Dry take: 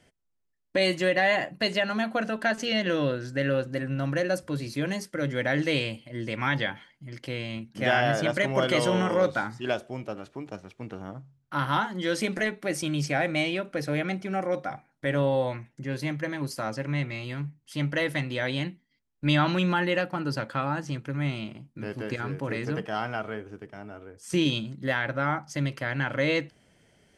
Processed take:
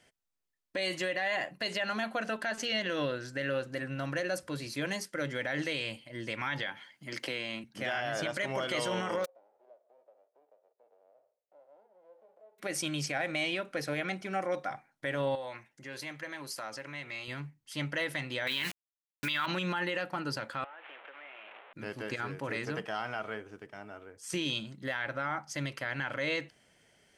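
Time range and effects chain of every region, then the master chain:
0:06.63–0:07.64: high-pass filter 180 Hz + multiband upward and downward compressor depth 100%
0:09.24–0:12.58: spectral envelope flattened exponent 0.1 + downward compressor 2.5 to 1, threshold −41 dBFS + flat-topped band-pass 540 Hz, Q 2.7
0:15.35–0:17.28: low-shelf EQ 260 Hz −11 dB + downward compressor 2.5 to 1, threshold −35 dBFS
0:18.47–0:19.46: flat-topped bell 2,300 Hz +15 dB 2.6 octaves + hollow resonant body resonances 240/420/950 Hz, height 9 dB, ringing for 50 ms + bit-depth reduction 6 bits, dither none
0:20.64–0:21.73: linear delta modulator 16 kbit/s, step −37 dBFS + high-pass filter 490 Hz 24 dB per octave + downward compressor 16 to 1, threshold −43 dBFS
whole clip: low-shelf EQ 440 Hz −10 dB; brickwall limiter −23 dBFS

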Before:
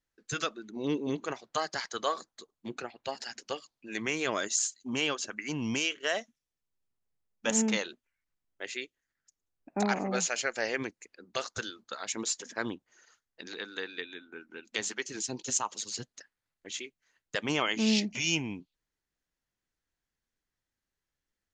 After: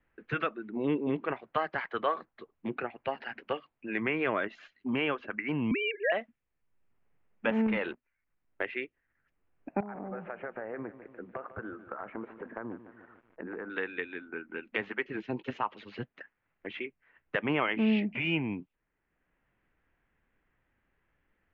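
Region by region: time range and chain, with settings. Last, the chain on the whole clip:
0:05.71–0:06.12: three sine waves on the formant tracks + multiband upward and downward compressor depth 40%
0:07.66–0:08.65: leveller curve on the samples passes 2 + downward compressor 4 to 1, threshold −29 dBFS
0:09.80–0:13.70: low-pass filter 1,400 Hz 24 dB per octave + downward compressor, threshold −41 dBFS + feedback echo at a low word length 147 ms, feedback 55%, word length 11 bits, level −14 dB
whole clip: Butterworth low-pass 2,600 Hz 36 dB per octave; multiband upward and downward compressor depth 40%; level +3 dB

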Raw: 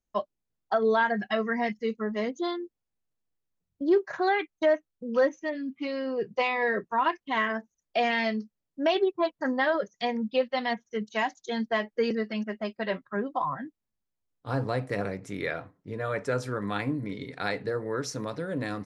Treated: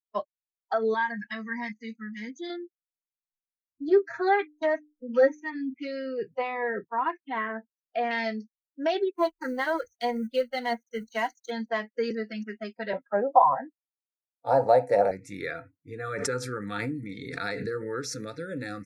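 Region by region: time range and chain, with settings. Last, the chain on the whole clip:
0:00.94–0:02.50: flat-topped bell 540 Hz −13 dB 1.1 octaves + notch comb filter 1,400 Hz
0:03.88–0:05.74: high-shelf EQ 5,600 Hz −10.5 dB + mains-hum notches 50/100/150/200/250/300 Hz + comb filter 7.5 ms, depth 91%
0:06.34–0:08.11: low-pass filter 3,700 Hz + high-shelf EQ 2,300 Hz −8 dB
0:09.13–0:11.51: mu-law and A-law mismatch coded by A + EQ curve with evenly spaced ripples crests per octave 1.9, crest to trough 9 dB
0:12.93–0:15.11: high-pass filter 120 Hz + flat-topped bell 690 Hz +14.5 dB 1.2 octaves
0:16.04–0:18.35: notch filter 770 Hz, Q 5.6 + background raised ahead of every attack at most 33 dB per second
whole clip: dynamic equaliser 2,900 Hz, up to −6 dB, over −48 dBFS, Q 2; noise reduction from a noise print of the clip's start 28 dB; low-shelf EQ 350 Hz −5 dB

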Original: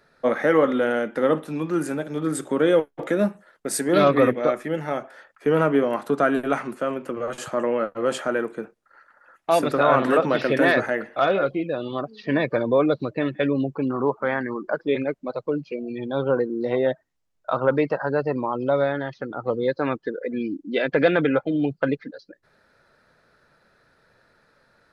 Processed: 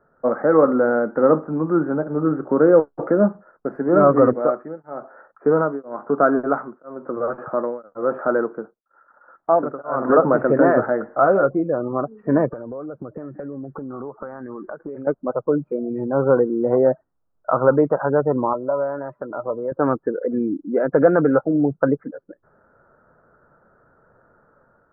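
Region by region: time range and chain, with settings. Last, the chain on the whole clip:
0:04.33–0:10.10: low-shelf EQ 130 Hz −8.5 dB + tremolo along a rectified sine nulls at 1 Hz
0:12.53–0:15.07: notch filter 1,000 Hz, Q 13 + downward compressor 20 to 1, threshold −33 dBFS + delay with a high-pass on its return 127 ms, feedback 76%, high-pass 3,000 Hz, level −15 dB
0:18.53–0:19.72: downward compressor 2 to 1, threshold −34 dBFS + low-shelf EQ 180 Hz −9 dB + hollow resonant body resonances 610/1,000 Hz, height 14 dB, ringing for 90 ms
whole clip: automatic gain control gain up to 5 dB; elliptic low-pass filter 1,400 Hz, stop band 60 dB; level +1 dB

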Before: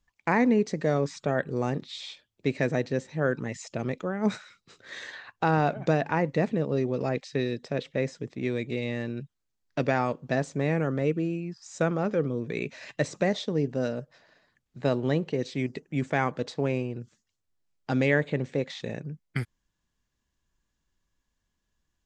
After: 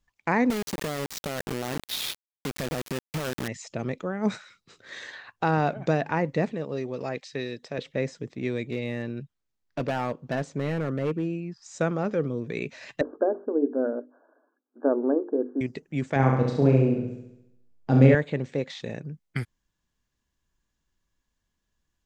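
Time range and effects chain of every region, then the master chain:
0:00.50–0:03.48: downward compressor, threshold −35 dBFS + log-companded quantiser 2 bits
0:06.51–0:07.78: low-shelf EQ 440 Hz −7.5 dB + notch filter 1,400 Hz, Q 29
0:08.68–0:11.65: high-shelf EQ 5,700 Hz −7 dB + gain into a clipping stage and back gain 21.5 dB
0:13.01–0:15.61: linear-phase brick-wall band-pass 240–1,700 Hz + spectral tilt −3.5 dB per octave + mains-hum notches 50/100/150/200/250/300/350/400/450 Hz
0:16.16–0:18.15: tilt shelving filter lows +7.5 dB, about 930 Hz + double-tracking delay 37 ms −5 dB + flutter between parallel walls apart 11.8 metres, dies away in 0.83 s
whole clip: no processing

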